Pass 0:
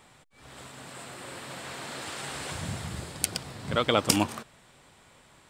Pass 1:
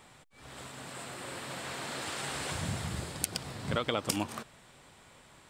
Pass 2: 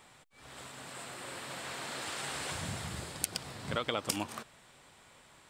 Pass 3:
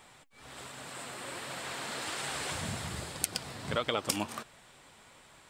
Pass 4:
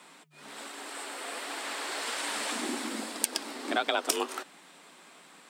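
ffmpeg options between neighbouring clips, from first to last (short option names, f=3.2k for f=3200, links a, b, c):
-af "acompressor=threshold=-27dB:ratio=6"
-af "lowshelf=f=430:g=-4.5,volume=-1dB"
-af "flanger=delay=1.1:depth=3.8:regen=79:speed=1.3:shape=triangular,volume=6.5dB"
-af "afreqshift=150,volume=3dB"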